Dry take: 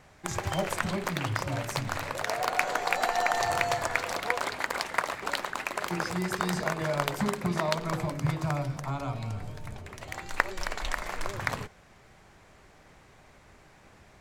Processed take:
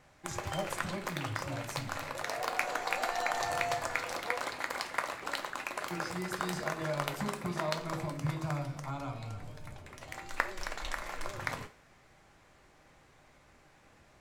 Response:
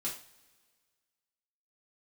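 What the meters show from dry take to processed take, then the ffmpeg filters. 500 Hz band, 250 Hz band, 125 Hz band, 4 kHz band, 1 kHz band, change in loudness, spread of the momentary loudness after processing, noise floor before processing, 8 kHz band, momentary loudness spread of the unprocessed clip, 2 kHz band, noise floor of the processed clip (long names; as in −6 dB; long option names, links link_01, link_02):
−5.5 dB, −6.0 dB, −6.5 dB, −4.5 dB, −5.5 dB, −5.5 dB, 10 LU, −57 dBFS, −5.0 dB, 9 LU, −5.0 dB, −62 dBFS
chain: -filter_complex "[0:a]asplit=2[link_01][link_02];[1:a]atrim=start_sample=2205,lowshelf=frequency=210:gain=-9[link_03];[link_02][link_03]afir=irnorm=-1:irlink=0,volume=-5dB[link_04];[link_01][link_04]amix=inputs=2:normalize=0,volume=-8dB"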